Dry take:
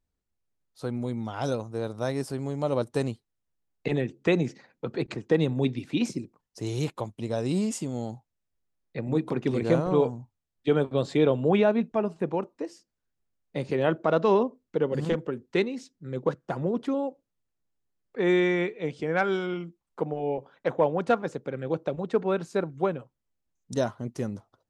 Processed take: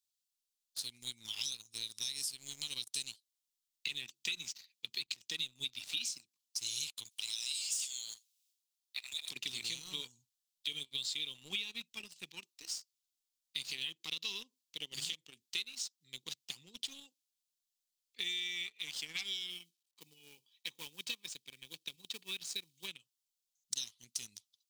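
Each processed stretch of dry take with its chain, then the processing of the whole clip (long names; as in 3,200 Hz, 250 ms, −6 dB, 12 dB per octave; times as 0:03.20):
0:07.09–0:09.29: high-pass filter 1,400 Hz 24 dB per octave + single-tap delay 78 ms −17.5 dB + transient designer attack +1 dB, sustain +10 dB
0:19.50–0:22.88: log-companded quantiser 8 bits + high-shelf EQ 5,200 Hz −7.5 dB + notch comb filter 700 Hz
whole clip: inverse Chebyshev high-pass filter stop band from 1,600 Hz, stop band 40 dB; leveller curve on the samples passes 2; downward compressor, threshold −46 dBFS; level +10 dB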